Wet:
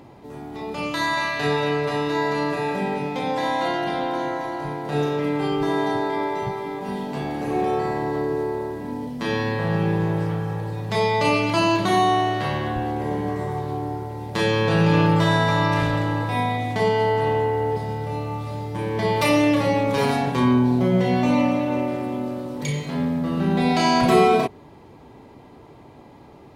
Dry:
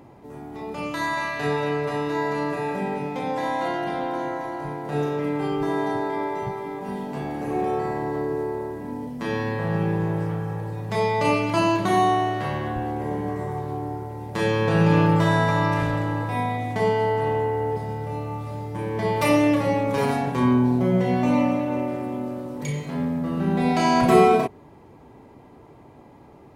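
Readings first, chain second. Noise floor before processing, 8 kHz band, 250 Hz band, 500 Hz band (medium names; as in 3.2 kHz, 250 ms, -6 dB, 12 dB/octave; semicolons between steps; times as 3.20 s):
-48 dBFS, +3.0 dB, +1.0 dB, +1.5 dB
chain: peaking EQ 3.9 kHz +6.5 dB 1.1 oct; in parallel at -1 dB: peak limiter -14 dBFS, peak gain reduction 10 dB; on the sum: trim -3.5 dB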